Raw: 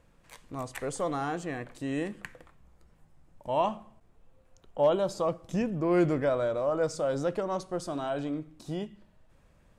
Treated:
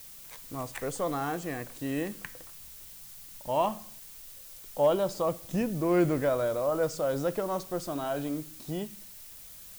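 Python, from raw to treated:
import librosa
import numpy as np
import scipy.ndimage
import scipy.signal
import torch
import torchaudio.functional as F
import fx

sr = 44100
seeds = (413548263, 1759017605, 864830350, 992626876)

y = fx.dmg_noise_colour(x, sr, seeds[0], colour='blue', level_db=-48.0)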